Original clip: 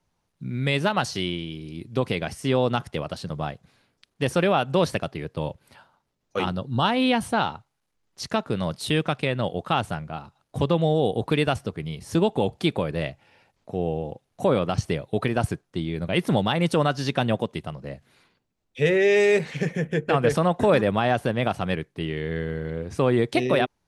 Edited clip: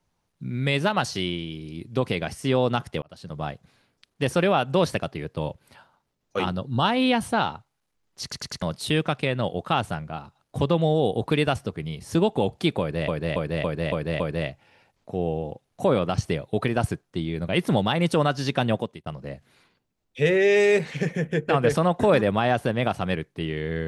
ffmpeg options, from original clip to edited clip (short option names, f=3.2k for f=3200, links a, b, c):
-filter_complex "[0:a]asplit=12[a][b][c][d][e][f][g][h][i][j][k][l];[a]atrim=end=3.02,asetpts=PTS-STARTPTS,afade=t=out:st=3.016:d=0.004:c=hsin[m];[b]atrim=start=3.02:end=8.322,asetpts=PTS-STARTPTS,afade=t=in:d=0.48[n];[c]atrim=start=8.218:end=8.322[o];[d]atrim=start=8.218:end=8.322[p];[e]atrim=start=8.218:end=8.322[q];[f]atrim=start=8.618:end=13.082[r];[g]atrim=start=12.798:end=13.082[s];[h]atrim=start=12.798:end=13.082[t];[i]atrim=start=12.798:end=13.082[u];[j]atrim=start=12.798:end=13.082[v];[k]atrim=start=12.798:end=17.66,asetpts=PTS-STARTPTS,afade=t=out:st=4.572:d=0.29[w];[l]atrim=start=17.66,asetpts=PTS-STARTPTS,afade=t=in:d=0.004:c=hsin[x];[m][n]concat=n=2:v=0:a=1[y];[y][o]acrossfade=d=0.004:c1=hsin:c2=hsin[z];[z][p]acrossfade=d=0.004:c1=hsin:c2=hsin[aa];[aa][q]acrossfade=d=0.004:c1=hsin:c2=hsin[ab];[ab][r]acrossfade=d=0.004:c1=hsin:c2=hsin[ac];[ac][s]acrossfade=d=0.004:c1=hsin:c2=hsin[ad];[ad][t]acrossfade=d=0.004:c1=hsin:c2=hsin[ae];[ae][u]acrossfade=d=0.004:c1=hsin:c2=hsin[af];[af][v]acrossfade=d=0.004:c1=hsin:c2=hsin[ag];[w][x]concat=n=2:v=0:a=1[ah];[ag][ah]acrossfade=d=0.004:c1=hsin:c2=hsin"